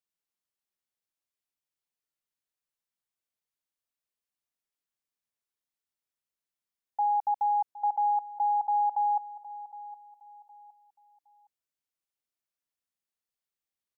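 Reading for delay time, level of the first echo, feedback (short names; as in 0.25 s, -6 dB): 0.764 s, -16.5 dB, 31%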